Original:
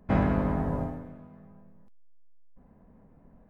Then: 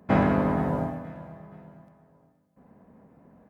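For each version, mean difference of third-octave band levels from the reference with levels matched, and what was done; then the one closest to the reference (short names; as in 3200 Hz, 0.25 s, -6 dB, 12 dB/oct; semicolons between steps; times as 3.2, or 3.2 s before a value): 2.5 dB: HPF 75 Hz; low shelf 110 Hz -10 dB; on a send: feedback echo 0.473 s, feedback 41%, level -18 dB; on the sum: gain +5.5 dB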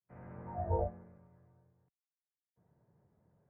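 5.0 dB: opening faded in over 1.02 s; mistuned SSB -71 Hz 150–2400 Hz; spectral noise reduction 20 dB; gain +8 dB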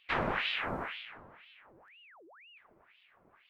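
10.5 dB: low shelf 320 Hz -10 dB; on a send: analogue delay 86 ms, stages 1024, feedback 64%, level -11 dB; on the sum: ring modulator with a swept carrier 1600 Hz, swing 80%, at 2 Hz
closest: first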